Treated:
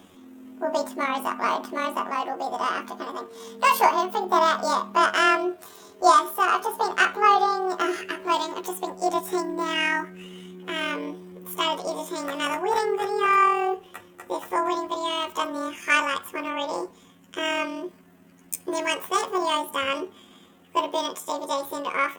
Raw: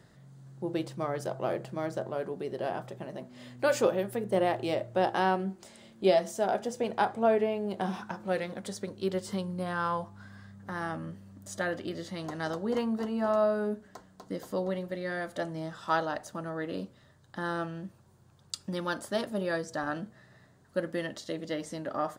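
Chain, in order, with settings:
pitch shift by two crossfaded delay taps +10.5 semitones
level +8 dB

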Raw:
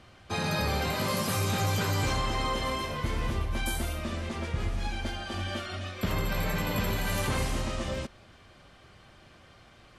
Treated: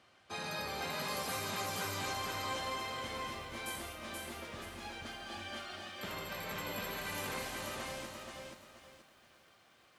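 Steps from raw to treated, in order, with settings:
high-pass filter 450 Hz 6 dB per octave
feedback echo at a low word length 479 ms, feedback 35%, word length 10 bits, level −3 dB
level −8 dB

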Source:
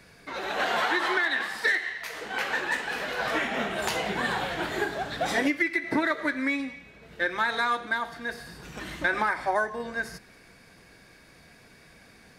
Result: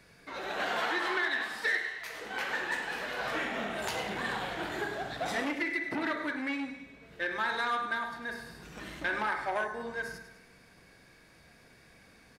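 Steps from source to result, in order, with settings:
repeating echo 103 ms, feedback 48%, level −11 dB
on a send at −7.5 dB: convolution reverb, pre-delay 43 ms
on the sum: saturating transformer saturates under 1,300 Hz
level −5.5 dB

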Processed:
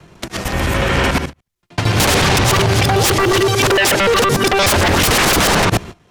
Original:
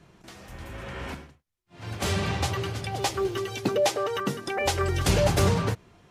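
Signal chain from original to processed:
reversed piece by piece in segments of 74 ms
noise gate −45 dBFS, range −22 dB
sine wavefolder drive 18 dB, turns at −10 dBFS
multiband upward and downward compressor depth 40%

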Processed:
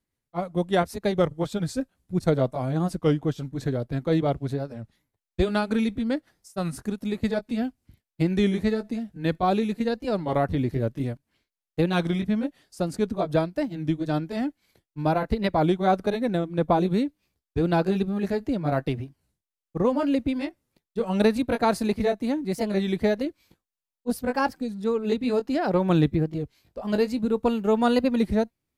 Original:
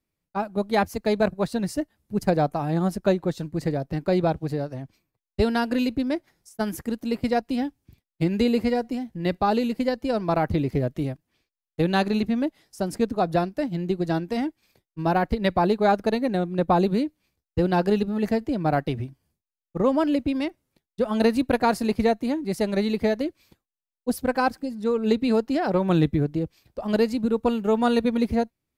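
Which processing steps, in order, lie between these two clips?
pitch glide at a constant tempo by −2.5 semitones ending unshifted
wow of a warped record 33 1/3 rpm, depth 160 cents

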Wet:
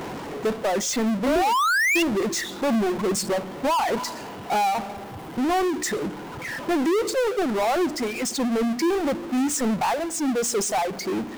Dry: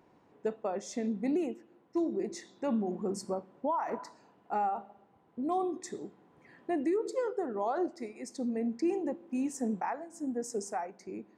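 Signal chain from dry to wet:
mains-hum notches 60/120/180/240/300 Hz
reverb reduction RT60 1.8 s
sound drawn into the spectrogram rise, 0:01.26–0:02.03, 530–2,900 Hz −30 dBFS
power curve on the samples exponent 0.35
level +2 dB

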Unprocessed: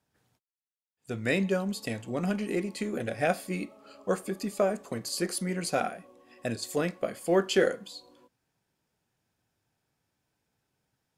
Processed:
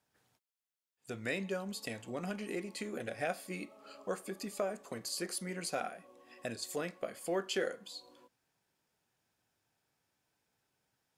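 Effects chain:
low-shelf EQ 300 Hz −8 dB
downward compressor 1.5 to 1, threshold −45 dBFS, peak gain reduction 8.5 dB

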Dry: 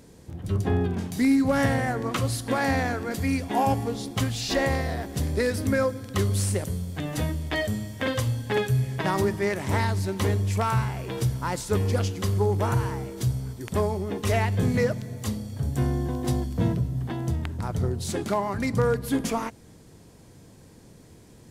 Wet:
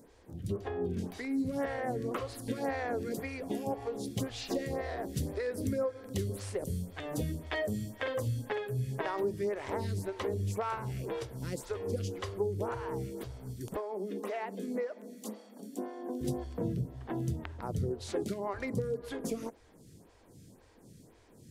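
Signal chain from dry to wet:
dynamic equaliser 450 Hz, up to +8 dB, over −40 dBFS, Q 1.5
downward compressor 6 to 1, threshold −24 dBFS, peak gain reduction 11.5 dB
0:13.76–0:16.21: Chebyshev high-pass with heavy ripple 190 Hz, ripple 3 dB
phaser with staggered stages 1.9 Hz
level −3.5 dB

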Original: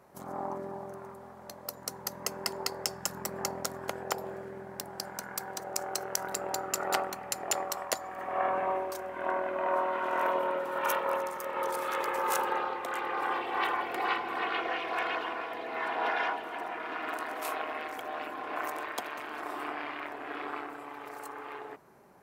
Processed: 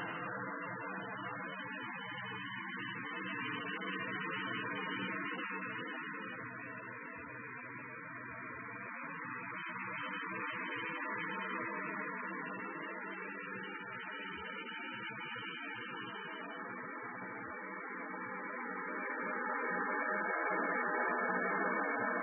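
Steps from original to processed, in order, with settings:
gate on every frequency bin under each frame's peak −30 dB strong
high-pass filter 110 Hz 12 dB per octave
mains-hum notches 50/100/150/200/250/300/350/400 Hz
gate on every frequency bin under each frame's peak −15 dB weak
extreme stretch with random phases 11×, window 0.50 s, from 0:06.55
level +5 dB
MP3 8 kbit/s 22,050 Hz

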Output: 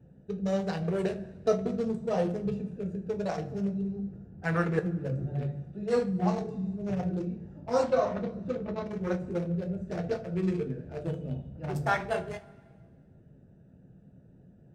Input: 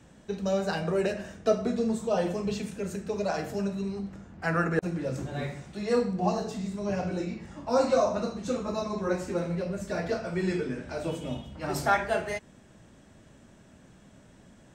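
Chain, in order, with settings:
adaptive Wiener filter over 41 samples
0:07.83–0:08.84: low-pass filter 3,700 Hz 12 dB per octave
coupled-rooms reverb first 0.22 s, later 1.7 s, from −21 dB, DRR 6 dB
level −2 dB

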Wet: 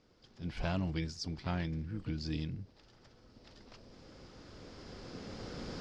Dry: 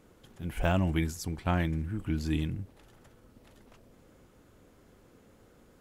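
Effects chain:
camcorder AGC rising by 7.4 dB per second
dynamic equaliser 160 Hz, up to +4 dB, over −44 dBFS, Q 1.5
pitch-shifted copies added +7 semitones −13 dB
transistor ladder low-pass 5,400 Hz, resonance 70%
level +2 dB

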